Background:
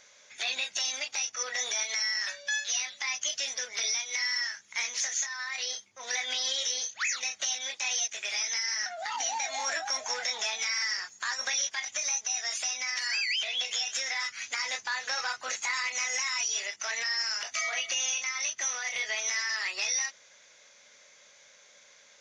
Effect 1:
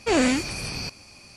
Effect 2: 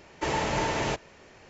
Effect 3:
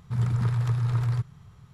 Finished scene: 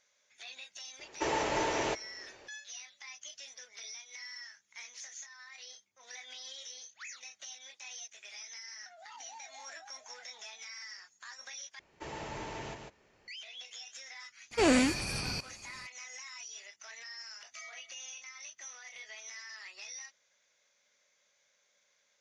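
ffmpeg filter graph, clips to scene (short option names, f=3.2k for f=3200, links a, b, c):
-filter_complex "[2:a]asplit=2[a][b];[0:a]volume=-16dB[c];[a]lowshelf=f=250:t=q:w=1.5:g=-7[d];[b]aecho=1:1:148:0.562[e];[1:a]aresample=32000,aresample=44100[f];[c]asplit=2[g][h];[g]atrim=end=11.794[i];[e]atrim=end=1.49,asetpts=PTS-STARTPTS,volume=-15dB[j];[h]atrim=start=13.276[k];[d]atrim=end=1.49,asetpts=PTS-STARTPTS,volume=-4dB,afade=t=in:d=0.004:c=hsin,afade=t=out:st=1.486:d=0.004:c=hsin,adelay=990[l];[f]atrim=end=1.36,asetpts=PTS-STARTPTS,volume=-4.5dB,afade=t=in:d=0.004:c=hsin,afade=t=out:st=1.356:d=0.004:c=hsin,adelay=14510[m];[i][j]acrossfade=d=0.004:c1=hsin:c2=hsin[n];[n][k]acrossfade=d=0.004:c1=hsin:c2=hsin[o];[o][l][m]amix=inputs=3:normalize=0"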